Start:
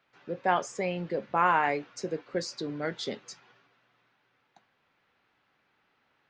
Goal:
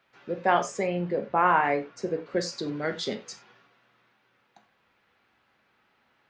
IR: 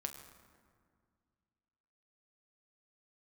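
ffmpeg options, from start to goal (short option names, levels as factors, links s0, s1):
-filter_complex "[0:a]asettb=1/sr,asplit=3[s0][s1][s2];[s0]atrim=end=0.834[s3];[s1]atrim=start=0.83:end=2.26,asetpts=PTS-STARTPTS,afade=t=in:d=0.004:c=qsin,afade=t=out:st=1.426:d=0.004:c=qsin,highshelf=f=2900:g=-10[s4];[s2]atrim=start=2.256[s5];[s3][s4]acrossfade=d=0.004:c1=hsin:c2=qsin[s6];[s6][s5]acrossfade=d=0.004:c1=qsin:c2=hsin[s7];[1:a]atrim=start_sample=2205,atrim=end_sample=4410[s8];[s7][s8]afir=irnorm=-1:irlink=0,volume=1.88"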